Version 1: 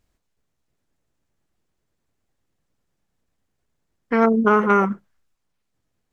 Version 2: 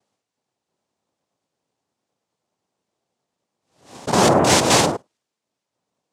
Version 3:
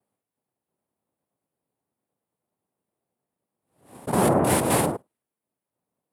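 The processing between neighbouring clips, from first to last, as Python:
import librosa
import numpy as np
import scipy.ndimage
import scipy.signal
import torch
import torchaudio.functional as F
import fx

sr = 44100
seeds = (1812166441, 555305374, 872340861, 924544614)

y1 = fx.spec_steps(x, sr, hold_ms=50)
y1 = fx.noise_vocoder(y1, sr, seeds[0], bands=2)
y1 = fx.pre_swell(y1, sr, db_per_s=120.0)
y1 = y1 * 10.0 ** (2.0 / 20.0)
y2 = fx.curve_eq(y1, sr, hz=(220.0, 2100.0, 6300.0, 10000.0), db=(0, -6, -18, 6))
y2 = y2 * 10.0 ** (-3.0 / 20.0)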